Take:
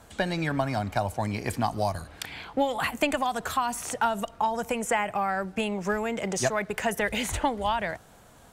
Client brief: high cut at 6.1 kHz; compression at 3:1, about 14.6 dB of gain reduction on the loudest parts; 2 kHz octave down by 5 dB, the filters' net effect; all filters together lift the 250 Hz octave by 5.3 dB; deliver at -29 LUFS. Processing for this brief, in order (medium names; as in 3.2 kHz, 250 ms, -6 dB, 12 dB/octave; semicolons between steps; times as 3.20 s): low-pass 6.1 kHz; peaking EQ 250 Hz +6.5 dB; peaking EQ 2 kHz -6.5 dB; compression 3:1, threshold -39 dBFS; trim +10.5 dB